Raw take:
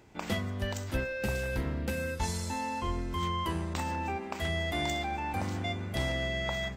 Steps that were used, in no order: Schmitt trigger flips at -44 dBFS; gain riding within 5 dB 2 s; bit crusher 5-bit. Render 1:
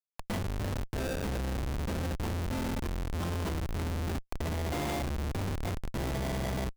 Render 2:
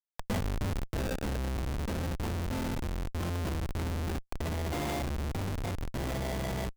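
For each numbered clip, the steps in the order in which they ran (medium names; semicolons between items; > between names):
gain riding > bit crusher > Schmitt trigger; bit crusher > Schmitt trigger > gain riding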